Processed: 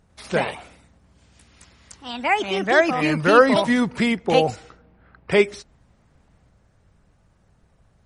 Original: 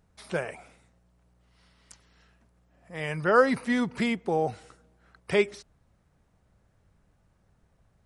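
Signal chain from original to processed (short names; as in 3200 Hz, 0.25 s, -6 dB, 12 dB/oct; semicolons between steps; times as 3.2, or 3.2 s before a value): echoes that change speed 96 ms, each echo +4 st, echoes 2; 4.26–5.32 low-pass opened by the level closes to 2300 Hz, open at -22.5 dBFS; gain +7 dB; MP3 40 kbps 48000 Hz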